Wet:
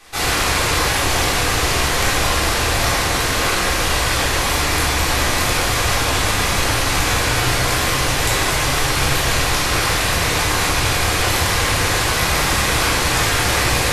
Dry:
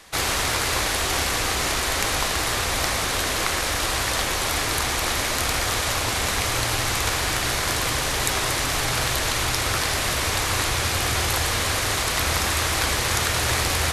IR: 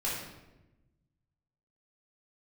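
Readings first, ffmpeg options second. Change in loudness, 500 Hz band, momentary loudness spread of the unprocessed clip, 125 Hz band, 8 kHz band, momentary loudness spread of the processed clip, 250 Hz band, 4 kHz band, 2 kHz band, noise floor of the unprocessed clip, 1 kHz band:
+5.5 dB, +6.5 dB, 1 LU, +7.0 dB, +3.5 dB, 1 LU, +7.5 dB, +4.5 dB, +6.0 dB, -25 dBFS, +6.0 dB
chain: -filter_complex "[1:a]atrim=start_sample=2205[s0];[0:a][s0]afir=irnorm=-1:irlink=0"

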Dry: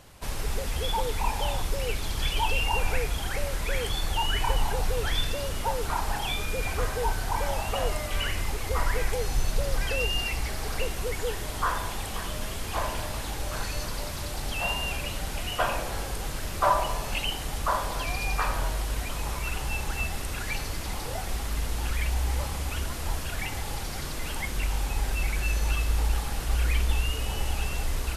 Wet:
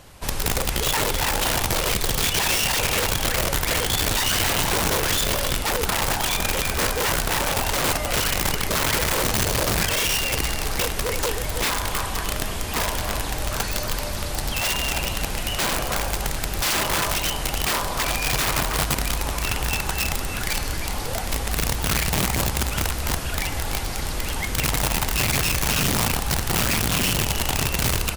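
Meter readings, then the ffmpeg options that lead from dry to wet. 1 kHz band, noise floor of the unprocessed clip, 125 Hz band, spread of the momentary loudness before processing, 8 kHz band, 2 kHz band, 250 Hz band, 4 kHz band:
+4.0 dB, -34 dBFS, +4.5 dB, 6 LU, +12.5 dB, +8.0 dB, +10.0 dB, +9.0 dB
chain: -filter_complex "[0:a]asplit=2[s0][s1];[s1]adelay=317,lowpass=f=2400:p=1,volume=0.473,asplit=2[s2][s3];[s3]adelay=317,lowpass=f=2400:p=1,volume=0.18,asplit=2[s4][s5];[s5]adelay=317,lowpass=f=2400:p=1,volume=0.18[s6];[s0][s2][s4][s6]amix=inputs=4:normalize=0,aeval=exprs='(mod(12.6*val(0)+1,2)-1)/12.6':c=same,volume=1.78"

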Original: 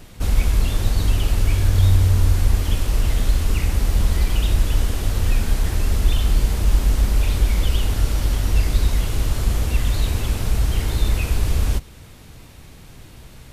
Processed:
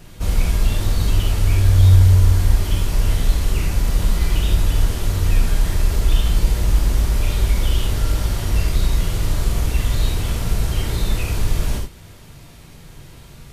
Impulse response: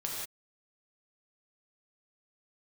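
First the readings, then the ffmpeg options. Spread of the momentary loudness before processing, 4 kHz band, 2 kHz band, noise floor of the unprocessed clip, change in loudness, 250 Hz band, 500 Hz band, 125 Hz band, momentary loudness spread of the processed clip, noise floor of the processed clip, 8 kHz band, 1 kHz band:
5 LU, +1.0 dB, +0.5 dB, -43 dBFS, +1.5 dB, +1.0 dB, +1.5 dB, +2.5 dB, 8 LU, -42 dBFS, +1.0 dB, +1.0 dB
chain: -filter_complex "[1:a]atrim=start_sample=2205,afade=t=out:st=0.14:d=0.01,atrim=end_sample=6615[s0];[0:a][s0]afir=irnorm=-1:irlink=0"

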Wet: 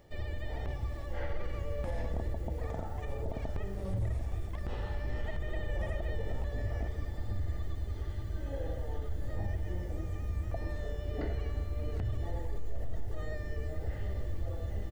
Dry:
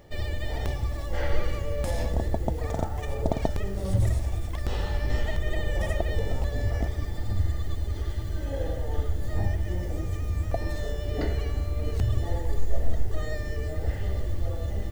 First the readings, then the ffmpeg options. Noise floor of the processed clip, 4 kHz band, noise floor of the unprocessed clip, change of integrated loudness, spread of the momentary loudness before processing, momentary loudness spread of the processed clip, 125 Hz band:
-40 dBFS, -12.0 dB, -33 dBFS, -8.0 dB, 4 LU, 4 LU, -8.0 dB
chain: -filter_complex "[0:a]acrossover=split=2800[s0][s1];[s1]acompressor=threshold=0.00178:ratio=4:attack=1:release=60[s2];[s0][s2]amix=inputs=2:normalize=0,alimiter=limit=0.112:level=0:latency=1:release=28,asplit=2[s3][s4];[s4]aecho=0:1:757:0.224[s5];[s3][s5]amix=inputs=2:normalize=0,volume=0.447"

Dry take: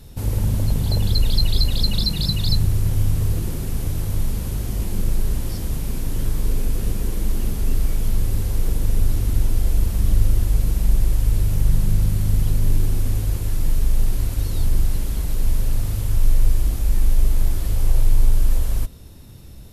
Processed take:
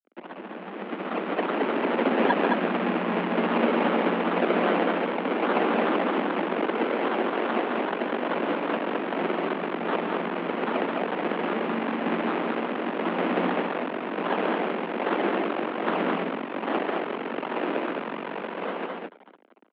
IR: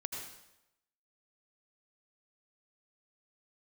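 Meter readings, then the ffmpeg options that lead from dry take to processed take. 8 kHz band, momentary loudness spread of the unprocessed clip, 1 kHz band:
under -40 dB, 6 LU, +16.5 dB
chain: -af "aemphasis=mode=production:type=50fm,aecho=1:1:7.5:0.83,acompressor=threshold=0.178:ratio=6,alimiter=limit=0.112:level=0:latency=1:release=127,dynaudnorm=f=140:g=17:m=6.31,acrusher=samples=35:mix=1:aa=0.000001:lfo=1:lforange=35:lforate=2.5,volume=2.99,asoftclip=hard,volume=0.335,tremolo=f=16:d=0.47,aeval=exprs='sgn(val(0))*max(abs(val(0))-0.0237,0)':c=same,highpass=f=160:t=q:w=0.5412,highpass=f=160:t=q:w=1.307,lowpass=f=2900:t=q:w=0.5176,lowpass=f=2900:t=q:w=0.7071,lowpass=f=2900:t=q:w=1.932,afreqshift=78,aecho=1:1:142.9|215.7:0.355|0.708,volume=0.794"

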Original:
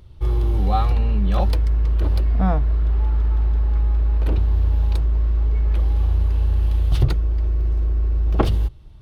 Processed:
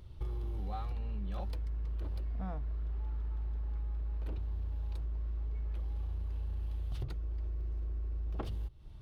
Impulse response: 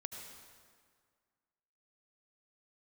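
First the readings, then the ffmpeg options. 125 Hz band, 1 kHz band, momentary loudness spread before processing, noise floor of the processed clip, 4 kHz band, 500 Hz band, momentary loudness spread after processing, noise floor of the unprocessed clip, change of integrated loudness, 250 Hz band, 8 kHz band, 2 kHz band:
-18.5 dB, -20.5 dB, 3 LU, -47 dBFS, -20.0 dB, -20.0 dB, 1 LU, -40 dBFS, -18.5 dB, -20.0 dB, no reading, -19.5 dB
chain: -filter_complex "[0:a]asplit=2[s0][s1];[s1]asoftclip=type=hard:threshold=0.158,volume=0.355[s2];[s0][s2]amix=inputs=2:normalize=0,acompressor=threshold=0.0447:ratio=6,volume=0.376"

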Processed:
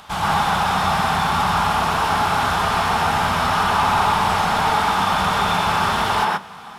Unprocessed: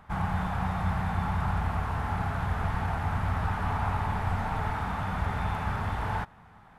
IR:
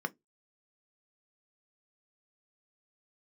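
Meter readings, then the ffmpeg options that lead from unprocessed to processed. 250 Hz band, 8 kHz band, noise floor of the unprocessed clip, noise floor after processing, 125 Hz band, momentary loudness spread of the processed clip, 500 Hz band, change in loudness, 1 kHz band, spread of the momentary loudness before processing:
+7.5 dB, no reading, -54 dBFS, -37 dBFS, +1.0 dB, 2 LU, +13.5 dB, +12.0 dB, +15.5 dB, 2 LU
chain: -filter_complex "[0:a]aexciter=amount=7.6:drive=6.6:freq=2900,asplit=2[s0][s1];[s1]highpass=f=720:p=1,volume=7.94,asoftclip=type=tanh:threshold=0.188[s2];[s0][s2]amix=inputs=2:normalize=0,lowpass=f=1800:p=1,volume=0.501,asplit=2[s3][s4];[1:a]atrim=start_sample=2205,adelay=126[s5];[s4][s5]afir=irnorm=-1:irlink=0,volume=1[s6];[s3][s6]amix=inputs=2:normalize=0,volume=1.33"

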